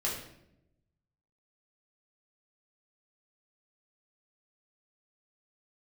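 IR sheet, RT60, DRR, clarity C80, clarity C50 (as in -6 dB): 0.80 s, -5.0 dB, 7.0 dB, 4.0 dB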